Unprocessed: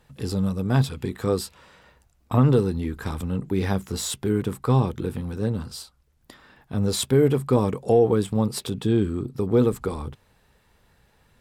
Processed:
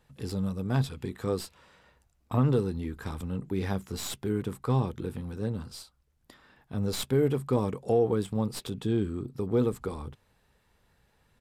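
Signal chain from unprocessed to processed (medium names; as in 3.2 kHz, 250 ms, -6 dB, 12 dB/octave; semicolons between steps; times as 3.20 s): tracing distortion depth 0.065 ms; resampled via 32 kHz; trim -6.5 dB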